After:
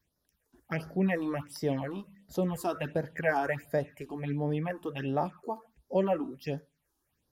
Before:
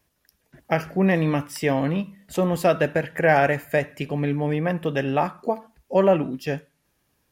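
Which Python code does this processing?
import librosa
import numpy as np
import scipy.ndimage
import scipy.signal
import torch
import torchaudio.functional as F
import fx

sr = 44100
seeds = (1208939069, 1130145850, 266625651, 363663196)

y = fx.phaser_stages(x, sr, stages=6, low_hz=140.0, high_hz=2700.0, hz=1.4, feedback_pct=20)
y = F.gain(torch.from_numpy(y), -7.0).numpy()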